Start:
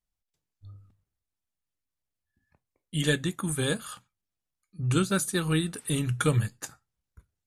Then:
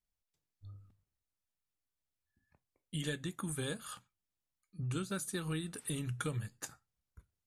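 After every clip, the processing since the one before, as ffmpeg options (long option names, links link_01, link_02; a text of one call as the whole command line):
ffmpeg -i in.wav -af "acompressor=threshold=-33dB:ratio=3,volume=-4dB" out.wav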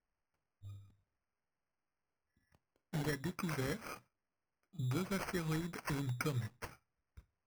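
ffmpeg -i in.wav -af "acrusher=samples=12:mix=1:aa=0.000001" out.wav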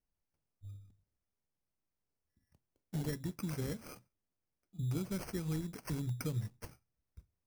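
ffmpeg -i in.wav -af "equalizer=frequency=1500:width_type=o:width=2.9:gain=-11.5,volume=2.5dB" out.wav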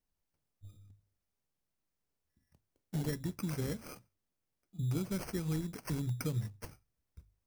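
ffmpeg -i in.wav -af "bandreject=frequency=50:width_type=h:width=6,bandreject=frequency=100:width_type=h:width=6,volume=2dB" out.wav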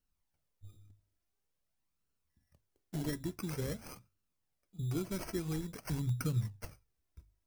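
ffmpeg -i in.wav -af "flanger=delay=0.7:depth=2.4:regen=42:speed=0.48:shape=sinusoidal,volume=4dB" out.wav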